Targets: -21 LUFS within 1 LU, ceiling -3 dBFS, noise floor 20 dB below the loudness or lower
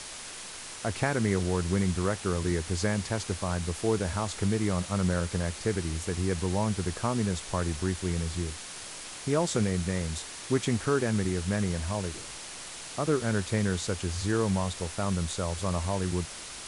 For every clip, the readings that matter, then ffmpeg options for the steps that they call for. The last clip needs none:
noise floor -42 dBFS; noise floor target -50 dBFS; loudness -30.0 LUFS; peak -13.0 dBFS; loudness target -21.0 LUFS
-> -af "afftdn=nr=8:nf=-42"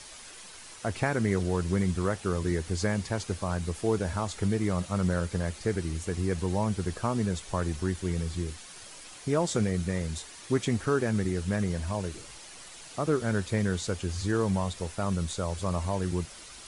noise floor -47 dBFS; noise floor target -50 dBFS
-> -af "afftdn=nr=6:nf=-47"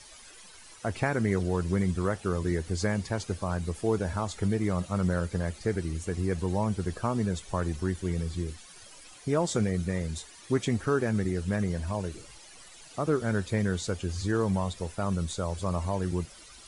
noise floor -51 dBFS; loudness -30.0 LUFS; peak -13.0 dBFS; loudness target -21.0 LUFS
-> -af "volume=9dB"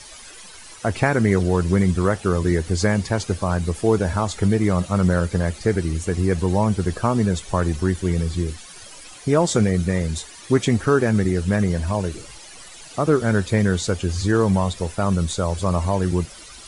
loudness -21.0 LUFS; peak -4.0 dBFS; noise floor -42 dBFS

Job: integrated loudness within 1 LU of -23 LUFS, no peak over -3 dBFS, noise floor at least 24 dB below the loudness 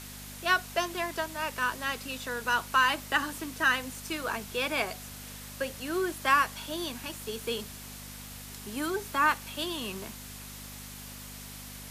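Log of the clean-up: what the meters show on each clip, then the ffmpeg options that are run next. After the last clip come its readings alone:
hum 50 Hz; harmonics up to 250 Hz; hum level -46 dBFS; noise floor -44 dBFS; noise floor target -54 dBFS; loudness -30.0 LUFS; peak -12.0 dBFS; loudness target -23.0 LUFS
-> -af "bandreject=f=50:t=h:w=4,bandreject=f=100:t=h:w=4,bandreject=f=150:t=h:w=4,bandreject=f=200:t=h:w=4,bandreject=f=250:t=h:w=4"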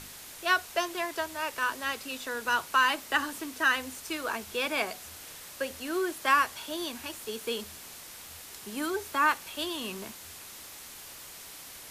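hum none; noise floor -46 dBFS; noise floor target -54 dBFS
-> -af "afftdn=nr=8:nf=-46"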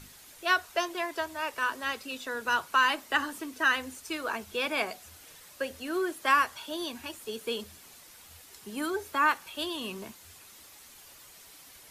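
noise floor -53 dBFS; noise floor target -55 dBFS
-> -af "afftdn=nr=6:nf=-53"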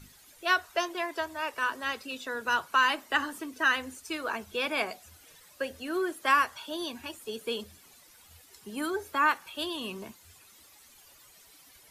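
noise floor -57 dBFS; loudness -30.5 LUFS; peak -12.0 dBFS; loudness target -23.0 LUFS
-> -af "volume=7.5dB"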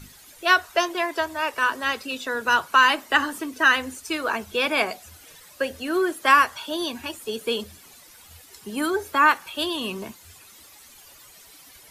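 loudness -23.0 LUFS; peak -4.5 dBFS; noise floor -50 dBFS

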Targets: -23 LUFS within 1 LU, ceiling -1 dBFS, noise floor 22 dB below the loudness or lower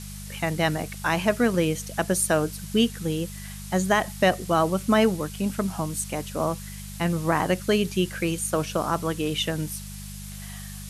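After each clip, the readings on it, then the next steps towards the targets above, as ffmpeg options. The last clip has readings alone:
hum 50 Hz; harmonics up to 200 Hz; hum level -36 dBFS; noise floor -38 dBFS; noise floor target -47 dBFS; loudness -25.0 LUFS; peak -8.0 dBFS; loudness target -23.0 LUFS
-> -af "bandreject=f=50:t=h:w=4,bandreject=f=100:t=h:w=4,bandreject=f=150:t=h:w=4,bandreject=f=200:t=h:w=4"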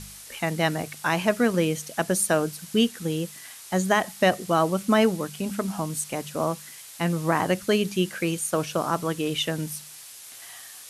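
hum none; noise floor -44 dBFS; noise floor target -48 dBFS
-> -af "afftdn=nr=6:nf=-44"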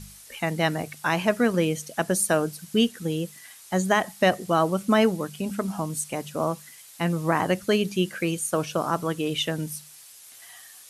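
noise floor -48 dBFS; loudness -25.5 LUFS; peak -8.5 dBFS; loudness target -23.0 LUFS
-> -af "volume=2.5dB"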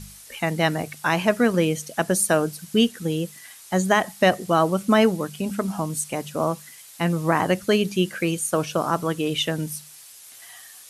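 loudness -23.0 LUFS; peak -6.0 dBFS; noise floor -46 dBFS

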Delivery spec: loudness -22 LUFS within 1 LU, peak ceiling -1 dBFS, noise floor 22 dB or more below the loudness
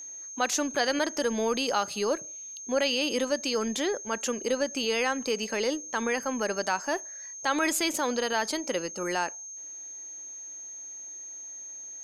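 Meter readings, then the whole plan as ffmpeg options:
steady tone 6400 Hz; tone level -39 dBFS; loudness -29.5 LUFS; peak -13.0 dBFS; loudness target -22.0 LUFS
-> -af "bandreject=f=6.4k:w=30"
-af "volume=7.5dB"

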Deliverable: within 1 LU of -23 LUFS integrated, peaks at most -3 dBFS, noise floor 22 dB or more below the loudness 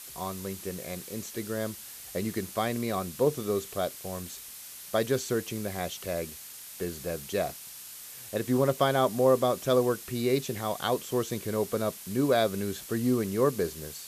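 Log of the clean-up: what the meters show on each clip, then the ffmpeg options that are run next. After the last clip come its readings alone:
noise floor -45 dBFS; noise floor target -52 dBFS; loudness -29.5 LUFS; peak -11.0 dBFS; loudness target -23.0 LUFS
-> -af "afftdn=nr=7:nf=-45"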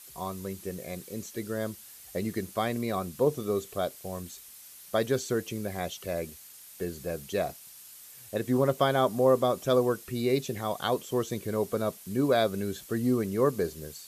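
noise floor -50 dBFS; noise floor target -52 dBFS
-> -af "afftdn=nr=6:nf=-50"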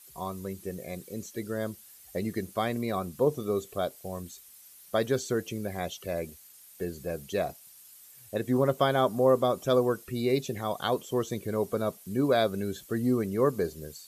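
noise floor -53 dBFS; loudness -30.0 LUFS; peak -11.0 dBFS; loudness target -23.0 LUFS
-> -af "volume=7dB"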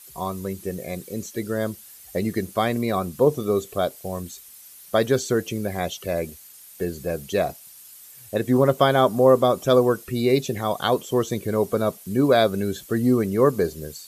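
loudness -23.0 LUFS; peak -4.0 dBFS; noise floor -46 dBFS

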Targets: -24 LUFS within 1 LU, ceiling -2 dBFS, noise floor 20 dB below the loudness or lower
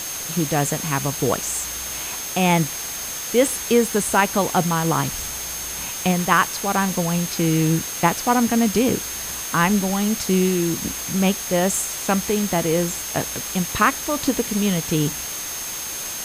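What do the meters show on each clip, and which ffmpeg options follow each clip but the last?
steady tone 6400 Hz; tone level -31 dBFS; noise floor -30 dBFS; noise floor target -41 dBFS; loudness -21.0 LUFS; peak -1.5 dBFS; loudness target -24.0 LUFS
-> -af "bandreject=f=6.4k:w=30"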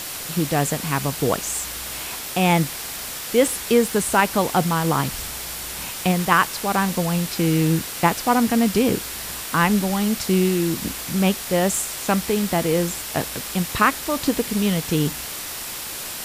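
steady tone none; noise floor -32 dBFS; noise floor target -42 dBFS
-> -af "afftdn=nr=10:nf=-32"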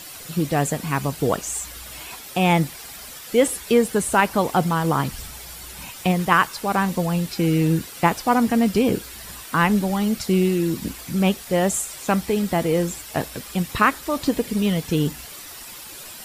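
noise floor -39 dBFS; noise floor target -42 dBFS
-> -af "afftdn=nr=6:nf=-39"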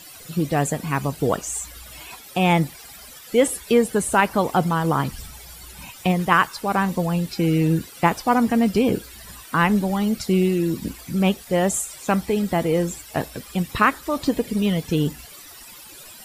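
noise floor -43 dBFS; loudness -22.0 LUFS; peak -2.5 dBFS; loudness target -24.0 LUFS
-> -af "volume=-2dB"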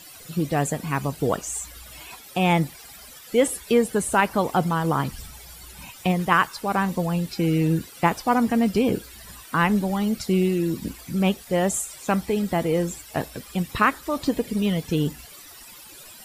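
loudness -24.0 LUFS; peak -4.5 dBFS; noise floor -45 dBFS

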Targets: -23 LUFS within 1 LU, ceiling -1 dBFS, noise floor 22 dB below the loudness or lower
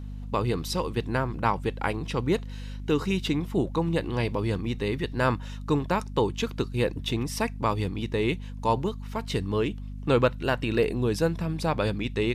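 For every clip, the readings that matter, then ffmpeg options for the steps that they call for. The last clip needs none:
hum 50 Hz; harmonics up to 250 Hz; hum level -34 dBFS; loudness -28.0 LUFS; peak -8.5 dBFS; loudness target -23.0 LUFS
-> -af "bandreject=f=50:t=h:w=4,bandreject=f=100:t=h:w=4,bandreject=f=150:t=h:w=4,bandreject=f=200:t=h:w=4,bandreject=f=250:t=h:w=4"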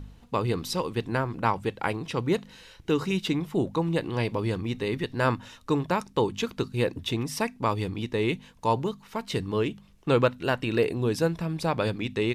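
hum none; loudness -28.0 LUFS; peak -8.5 dBFS; loudness target -23.0 LUFS
-> -af "volume=5dB"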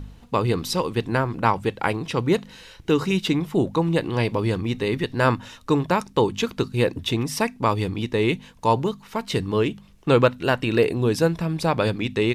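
loudness -23.0 LUFS; peak -3.5 dBFS; noise floor -49 dBFS

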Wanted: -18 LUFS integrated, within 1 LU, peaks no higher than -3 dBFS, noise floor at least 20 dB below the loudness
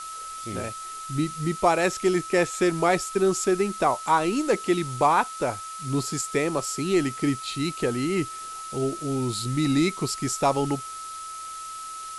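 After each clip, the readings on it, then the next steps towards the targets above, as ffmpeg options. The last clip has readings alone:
steady tone 1300 Hz; tone level -35 dBFS; noise floor -37 dBFS; noise floor target -46 dBFS; loudness -25.5 LUFS; peak -8.5 dBFS; loudness target -18.0 LUFS
-> -af "bandreject=f=1.3k:w=30"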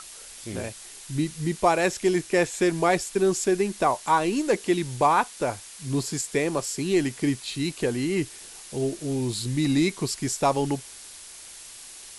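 steady tone none; noise floor -44 dBFS; noise floor target -46 dBFS
-> -af "afftdn=nr=6:nf=-44"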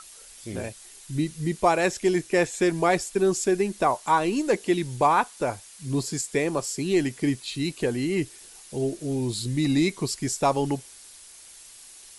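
noise floor -48 dBFS; loudness -25.5 LUFS; peak -8.5 dBFS; loudness target -18.0 LUFS
-> -af "volume=7.5dB,alimiter=limit=-3dB:level=0:latency=1"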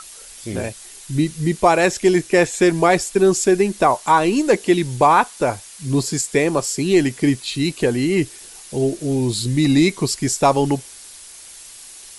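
loudness -18.0 LUFS; peak -3.0 dBFS; noise floor -40 dBFS

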